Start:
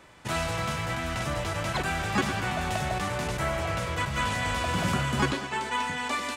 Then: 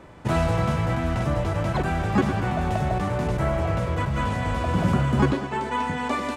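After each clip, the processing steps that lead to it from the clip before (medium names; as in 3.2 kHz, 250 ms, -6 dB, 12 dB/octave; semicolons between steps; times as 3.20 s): tilt shelf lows +8 dB, about 1.3 kHz; gain riding 2 s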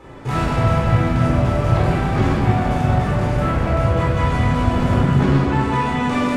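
saturation -23 dBFS, distortion -11 dB; simulated room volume 1200 m³, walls mixed, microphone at 4.1 m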